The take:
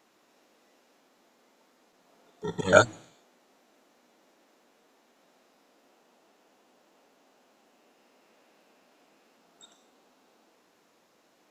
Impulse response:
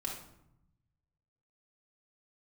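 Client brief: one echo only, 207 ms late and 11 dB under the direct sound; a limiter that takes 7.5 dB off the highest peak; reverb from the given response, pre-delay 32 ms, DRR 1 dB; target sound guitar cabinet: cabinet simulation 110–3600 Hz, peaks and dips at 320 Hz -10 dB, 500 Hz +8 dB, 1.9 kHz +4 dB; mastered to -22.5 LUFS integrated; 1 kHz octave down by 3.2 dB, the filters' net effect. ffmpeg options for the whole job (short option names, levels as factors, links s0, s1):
-filter_complex "[0:a]equalizer=f=1000:t=o:g=-6.5,alimiter=limit=0.251:level=0:latency=1,aecho=1:1:207:0.282,asplit=2[s0][s1];[1:a]atrim=start_sample=2205,adelay=32[s2];[s1][s2]afir=irnorm=-1:irlink=0,volume=0.75[s3];[s0][s3]amix=inputs=2:normalize=0,highpass=110,equalizer=f=320:t=q:w=4:g=-10,equalizer=f=500:t=q:w=4:g=8,equalizer=f=1900:t=q:w=4:g=4,lowpass=f=3600:w=0.5412,lowpass=f=3600:w=1.3066,volume=1.5"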